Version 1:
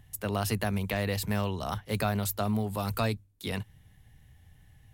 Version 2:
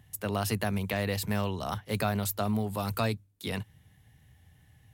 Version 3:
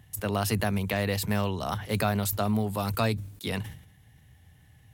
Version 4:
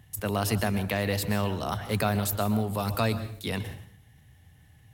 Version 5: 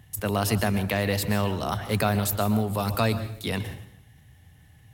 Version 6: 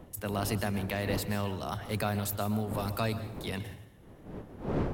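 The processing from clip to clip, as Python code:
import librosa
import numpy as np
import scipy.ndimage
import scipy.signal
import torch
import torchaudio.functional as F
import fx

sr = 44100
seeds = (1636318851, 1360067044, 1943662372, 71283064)

y1 = scipy.signal.sosfilt(scipy.signal.butter(2, 73.0, 'highpass', fs=sr, output='sos'), x)
y2 = fx.sustainer(y1, sr, db_per_s=94.0)
y2 = F.gain(torch.from_numpy(y2), 2.5).numpy()
y3 = fx.rev_plate(y2, sr, seeds[0], rt60_s=0.52, hf_ratio=0.9, predelay_ms=110, drr_db=12.0)
y4 = fx.echo_feedback(y3, sr, ms=144, feedback_pct=46, wet_db=-23)
y4 = F.gain(torch.from_numpy(y4), 2.5).numpy()
y5 = fx.dmg_wind(y4, sr, seeds[1], corner_hz=390.0, level_db=-33.0)
y5 = F.gain(torch.from_numpy(y5), -7.5).numpy()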